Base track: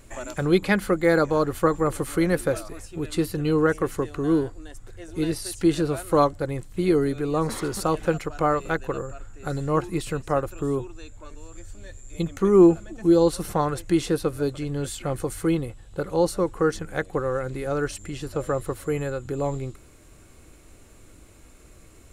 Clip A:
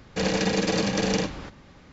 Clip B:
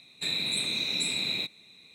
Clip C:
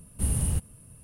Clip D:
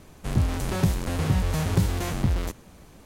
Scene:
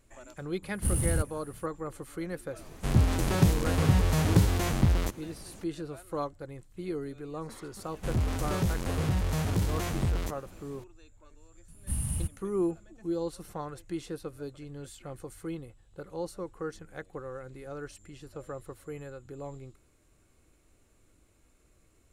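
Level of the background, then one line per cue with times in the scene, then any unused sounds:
base track -14.5 dB
0.63 add C + one diode to ground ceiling -19.5 dBFS
2.59 add D
7.79 add D -2.5 dB + soft clip -18 dBFS
11.68 add C -5 dB + bell 450 Hz -13.5 dB
not used: A, B

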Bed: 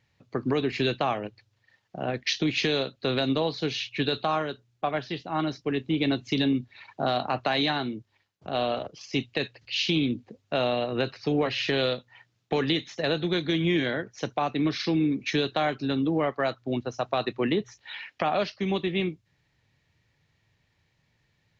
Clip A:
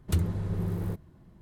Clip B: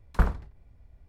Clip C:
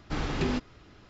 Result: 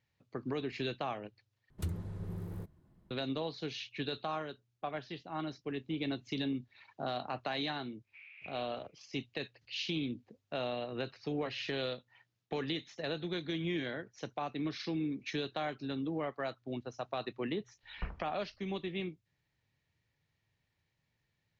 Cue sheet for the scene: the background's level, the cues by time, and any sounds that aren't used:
bed -11 dB
1.7 replace with A -10.5 dB
8.03 add C -5 dB, fades 0.10 s + Butterworth band-pass 2400 Hz, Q 5.9
17.83 add B -17.5 dB + steep low-pass 2900 Hz

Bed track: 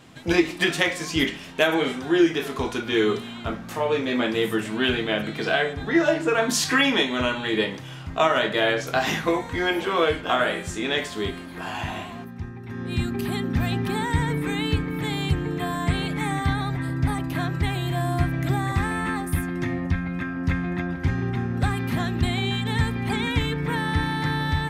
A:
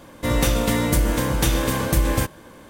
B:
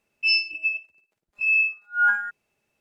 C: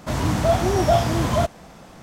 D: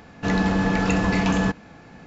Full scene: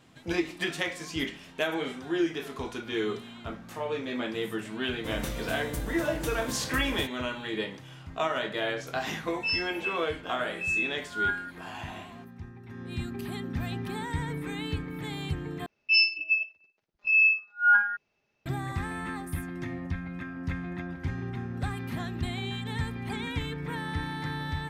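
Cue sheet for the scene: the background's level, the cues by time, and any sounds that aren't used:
bed track -9 dB
4.81 add A -15.5 dB
9.2 add B -8.5 dB
15.66 replace with B -0.5 dB + steep low-pass 6100 Hz 48 dB/oct
not used: C, D

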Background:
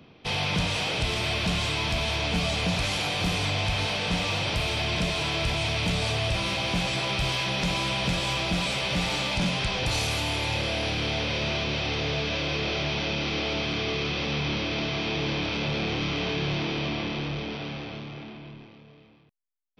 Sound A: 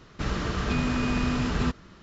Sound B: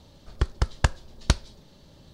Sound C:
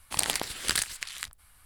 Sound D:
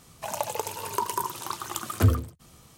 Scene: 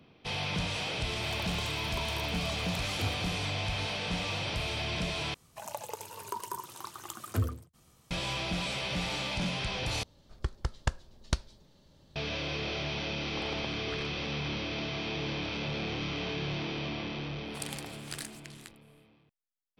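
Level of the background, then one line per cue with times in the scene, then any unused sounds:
background -6.5 dB
0.99 add D -15 dB
5.34 replace with D -9.5 dB
10.03 replace with B -8.5 dB
13.23 add C -4.5 dB + LPF 1000 Hz
17.43 add C -13.5 dB, fades 0.10 s
not used: A

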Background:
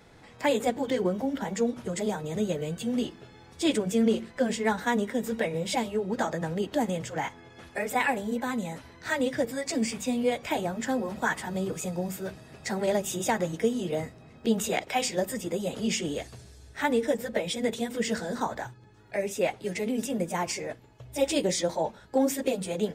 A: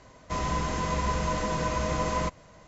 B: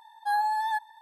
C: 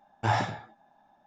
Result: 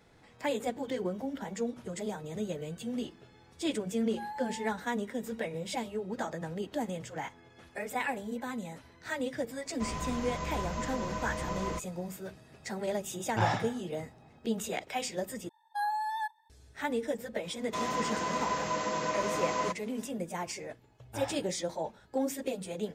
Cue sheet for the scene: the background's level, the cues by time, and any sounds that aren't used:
background -7 dB
3.91 add B -15 dB
9.5 add A -8 dB
13.13 add C -2.5 dB
15.49 replace with B -6 dB + gate -40 dBFS, range -9 dB
17.43 add A -2 dB + HPF 250 Hz
20.9 add C -15 dB

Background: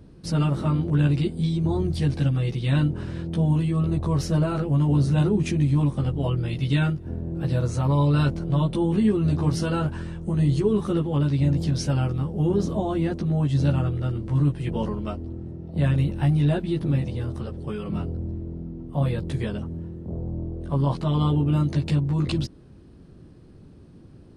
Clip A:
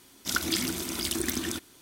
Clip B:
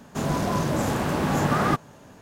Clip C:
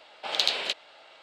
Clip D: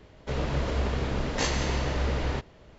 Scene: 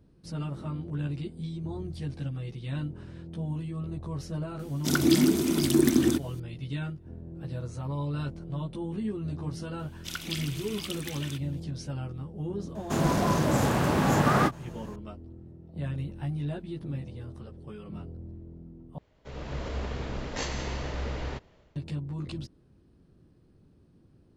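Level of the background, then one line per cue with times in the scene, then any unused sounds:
background -12 dB
4.59 add A -2 dB + bell 280 Hz +15 dB 1.9 oct
9.79 add A -12 dB + bell 2800 Hz +12 dB 0.91 oct
12.75 add B -0.5 dB + ending taper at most 460 dB/s
18.98 replace with D -13.5 dB + AGC gain up to 8 dB
not used: C

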